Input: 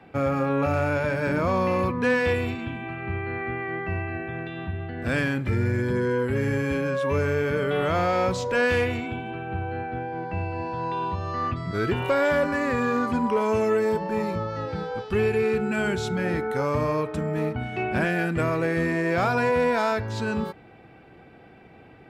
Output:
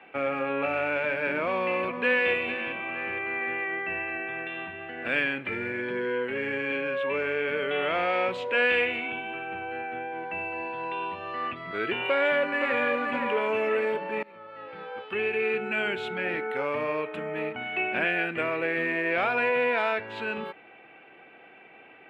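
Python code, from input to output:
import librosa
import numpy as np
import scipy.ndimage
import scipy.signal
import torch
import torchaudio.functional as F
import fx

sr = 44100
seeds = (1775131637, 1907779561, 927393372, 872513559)

y = fx.echo_throw(x, sr, start_s=1.36, length_s=0.9, ms=460, feedback_pct=60, wet_db=-13.0)
y = fx.bandpass_edges(y, sr, low_hz=100.0, high_hz=7800.0, at=(5.72, 7.48))
y = fx.echo_throw(y, sr, start_s=12.08, length_s=0.73, ms=520, feedback_pct=50, wet_db=-6.0)
y = fx.edit(y, sr, fx.fade_in_from(start_s=14.23, length_s=1.31, floor_db=-23.5), tone=tone)
y = fx.dynamic_eq(y, sr, hz=1100.0, q=1.3, threshold_db=-37.0, ratio=4.0, max_db=-5)
y = scipy.signal.sosfilt(scipy.signal.bessel(2, 480.0, 'highpass', norm='mag', fs=sr, output='sos'), y)
y = fx.high_shelf_res(y, sr, hz=4000.0, db=-13.5, q=3.0)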